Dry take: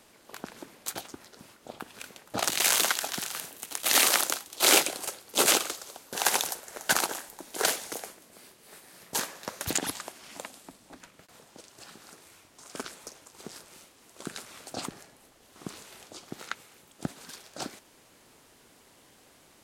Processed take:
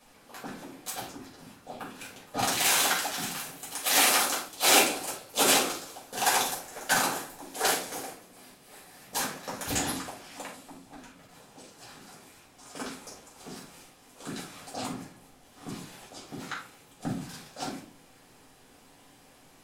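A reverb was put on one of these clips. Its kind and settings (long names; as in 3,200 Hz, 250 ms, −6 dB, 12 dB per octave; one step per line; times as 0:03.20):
rectangular room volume 280 cubic metres, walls furnished, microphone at 5.8 metres
level −8.5 dB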